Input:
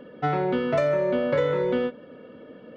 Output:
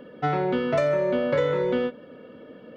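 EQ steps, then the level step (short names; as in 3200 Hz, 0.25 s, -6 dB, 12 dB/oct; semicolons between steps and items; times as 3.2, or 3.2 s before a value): high shelf 5100 Hz +4.5 dB; 0.0 dB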